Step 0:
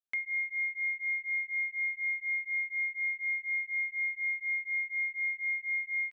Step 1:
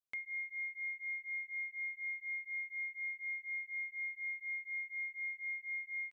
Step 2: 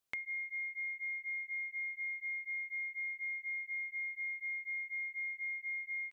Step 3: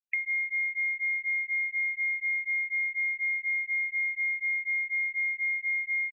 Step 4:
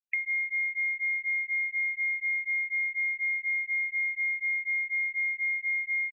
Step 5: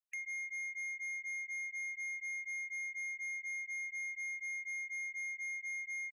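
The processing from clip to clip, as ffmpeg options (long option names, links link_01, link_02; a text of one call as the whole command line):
ffmpeg -i in.wav -af "equalizer=frequency=2000:width=1.5:gain=-5.5,volume=-3dB" out.wav
ffmpeg -i in.wav -af "acompressor=threshold=-47dB:ratio=6,volume=8.5dB" out.wav
ffmpeg -i in.wav -af "crystalizer=i=10:c=0,afftfilt=real='re*gte(hypot(re,im),0.0398)':imag='im*gte(hypot(re,im),0.0398)':win_size=1024:overlap=0.75" out.wav
ffmpeg -i in.wav -af anull out.wav
ffmpeg -i in.wav -af "asoftclip=type=tanh:threshold=-31.5dB,volume=-7dB" out.wav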